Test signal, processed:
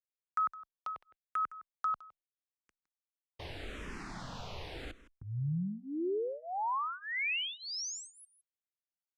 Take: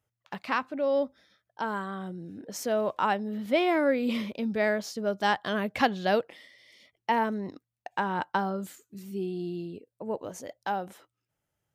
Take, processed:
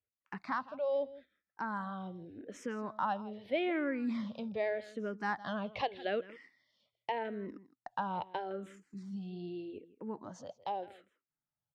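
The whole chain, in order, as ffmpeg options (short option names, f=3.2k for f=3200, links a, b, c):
-filter_complex "[0:a]lowpass=3.9k,agate=range=-10dB:threshold=-52dB:ratio=16:detection=peak,acompressor=threshold=-34dB:ratio=1.5,aecho=1:1:162:0.133,asplit=2[a][b];[b]afreqshift=-0.82[c];[a][c]amix=inputs=2:normalize=1,volume=-2dB"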